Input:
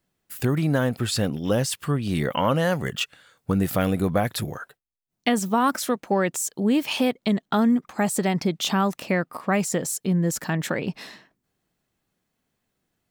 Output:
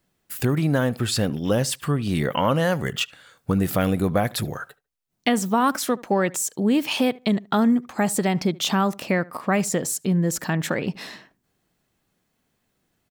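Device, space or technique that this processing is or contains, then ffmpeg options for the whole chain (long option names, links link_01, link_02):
parallel compression: -filter_complex "[0:a]asplit=2[link_01][link_02];[link_02]adelay=74,lowpass=frequency=2400:poles=1,volume=-22dB,asplit=2[link_03][link_04];[link_04]adelay=74,lowpass=frequency=2400:poles=1,volume=0.17[link_05];[link_01][link_03][link_05]amix=inputs=3:normalize=0,asplit=2[link_06][link_07];[link_07]acompressor=threshold=-35dB:ratio=6,volume=-3dB[link_08];[link_06][link_08]amix=inputs=2:normalize=0"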